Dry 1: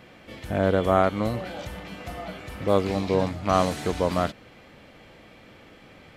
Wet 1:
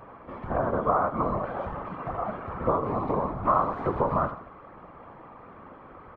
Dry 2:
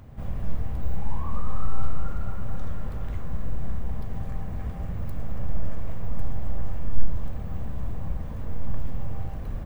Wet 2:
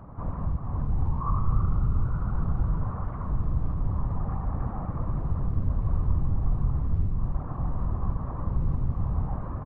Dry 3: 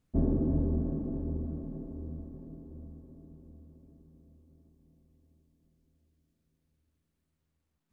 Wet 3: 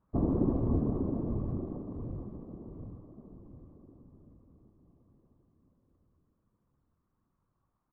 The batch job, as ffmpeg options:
-af "acompressor=threshold=-24dB:ratio=10,lowpass=f=1.1k:t=q:w=4.9,aecho=1:1:79|158|237|316:0.282|0.116|0.0474|0.0194,afftfilt=real='hypot(re,im)*cos(2*PI*random(0))':imag='hypot(re,im)*sin(2*PI*random(1))':win_size=512:overlap=0.75,volume=6dB"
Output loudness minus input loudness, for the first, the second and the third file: -2.5, +5.5, 0.0 LU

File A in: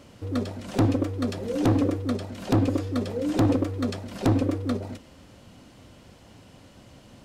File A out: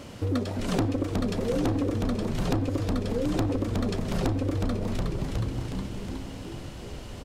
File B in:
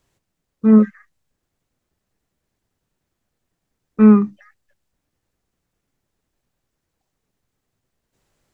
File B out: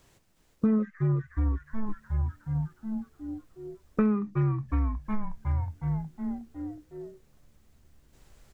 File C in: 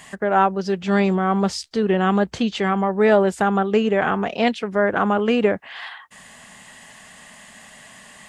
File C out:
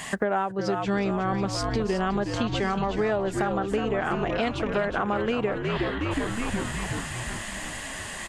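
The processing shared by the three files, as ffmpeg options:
-filter_complex "[0:a]asubboost=boost=4.5:cutoff=70,asplit=9[a][b][c][d][e][f][g][h][i];[b]adelay=365,afreqshift=-73,volume=-7.5dB[j];[c]adelay=730,afreqshift=-146,volume=-11.9dB[k];[d]adelay=1095,afreqshift=-219,volume=-16.4dB[l];[e]adelay=1460,afreqshift=-292,volume=-20.8dB[m];[f]adelay=1825,afreqshift=-365,volume=-25.2dB[n];[g]adelay=2190,afreqshift=-438,volume=-29.7dB[o];[h]adelay=2555,afreqshift=-511,volume=-34.1dB[p];[i]adelay=2920,afreqshift=-584,volume=-38.6dB[q];[a][j][k][l][m][n][o][p][q]amix=inputs=9:normalize=0,acompressor=threshold=-31dB:ratio=8,volume=7.5dB"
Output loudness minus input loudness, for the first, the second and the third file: -3.0, -17.0, -7.5 LU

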